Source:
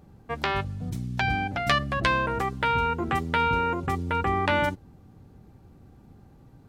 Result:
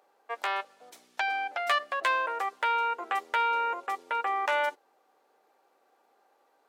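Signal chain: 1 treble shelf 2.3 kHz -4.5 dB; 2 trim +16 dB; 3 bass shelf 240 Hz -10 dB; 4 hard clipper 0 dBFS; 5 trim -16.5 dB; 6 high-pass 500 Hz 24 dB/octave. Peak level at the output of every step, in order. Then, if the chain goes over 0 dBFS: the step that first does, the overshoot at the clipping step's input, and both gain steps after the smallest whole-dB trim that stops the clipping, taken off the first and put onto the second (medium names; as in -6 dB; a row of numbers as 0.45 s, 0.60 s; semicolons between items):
-7.0 dBFS, +9.0 dBFS, +7.0 dBFS, 0.0 dBFS, -16.5 dBFS, -14.0 dBFS; step 2, 7.0 dB; step 2 +9 dB, step 5 -9.5 dB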